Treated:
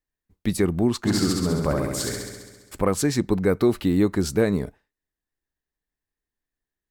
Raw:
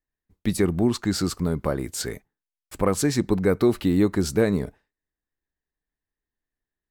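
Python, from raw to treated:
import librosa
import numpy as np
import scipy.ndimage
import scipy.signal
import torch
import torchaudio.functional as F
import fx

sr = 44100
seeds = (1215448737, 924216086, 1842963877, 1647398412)

y = fx.room_flutter(x, sr, wall_m=11.5, rt60_s=1.3, at=(1.04, 2.77), fade=0.02)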